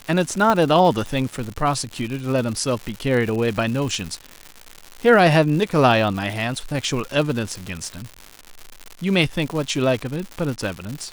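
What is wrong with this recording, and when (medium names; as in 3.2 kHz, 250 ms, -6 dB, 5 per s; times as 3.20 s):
crackle 200 per s -26 dBFS
0.50 s: pop -7 dBFS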